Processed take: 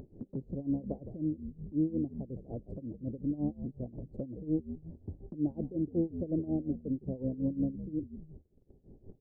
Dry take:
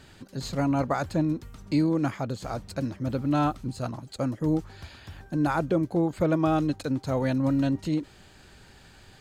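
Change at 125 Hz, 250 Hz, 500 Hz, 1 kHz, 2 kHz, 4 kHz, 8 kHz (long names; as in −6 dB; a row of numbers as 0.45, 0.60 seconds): −9.5 dB, −7.0 dB, −11.0 dB, −27.0 dB, below −40 dB, below −40 dB, below −30 dB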